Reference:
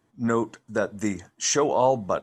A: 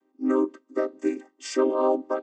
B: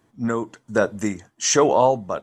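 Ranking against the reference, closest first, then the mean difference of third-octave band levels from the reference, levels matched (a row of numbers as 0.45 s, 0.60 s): B, A; 2.0 dB, 8.5 dB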